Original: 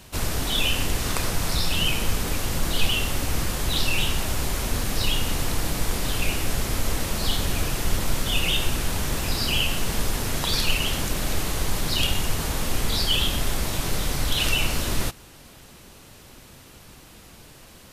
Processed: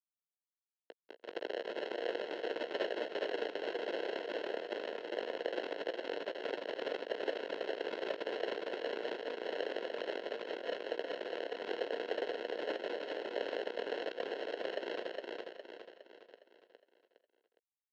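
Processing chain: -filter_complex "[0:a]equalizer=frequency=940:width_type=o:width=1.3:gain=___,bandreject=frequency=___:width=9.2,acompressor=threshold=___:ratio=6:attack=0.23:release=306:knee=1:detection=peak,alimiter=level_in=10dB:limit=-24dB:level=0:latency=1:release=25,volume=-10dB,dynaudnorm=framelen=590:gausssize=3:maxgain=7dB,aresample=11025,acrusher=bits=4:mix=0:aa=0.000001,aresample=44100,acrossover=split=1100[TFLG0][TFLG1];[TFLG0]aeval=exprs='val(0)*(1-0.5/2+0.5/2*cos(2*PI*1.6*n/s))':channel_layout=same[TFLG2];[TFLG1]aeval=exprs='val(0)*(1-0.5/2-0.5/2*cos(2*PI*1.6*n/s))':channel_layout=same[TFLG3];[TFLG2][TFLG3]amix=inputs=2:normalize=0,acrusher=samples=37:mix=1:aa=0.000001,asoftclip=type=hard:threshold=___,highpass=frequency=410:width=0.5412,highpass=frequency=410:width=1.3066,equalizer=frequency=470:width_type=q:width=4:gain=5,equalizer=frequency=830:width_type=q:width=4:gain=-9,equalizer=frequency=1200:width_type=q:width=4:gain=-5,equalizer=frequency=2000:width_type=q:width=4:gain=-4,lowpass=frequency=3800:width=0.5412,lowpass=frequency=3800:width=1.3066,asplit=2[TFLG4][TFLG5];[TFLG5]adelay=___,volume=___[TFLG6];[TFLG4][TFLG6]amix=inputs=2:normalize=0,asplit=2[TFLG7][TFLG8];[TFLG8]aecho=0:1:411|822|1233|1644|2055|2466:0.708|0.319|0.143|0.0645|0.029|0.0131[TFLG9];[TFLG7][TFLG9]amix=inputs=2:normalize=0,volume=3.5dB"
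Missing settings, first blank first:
-3.5, 960, -36dB, -24.5dB, 17, -13.5dB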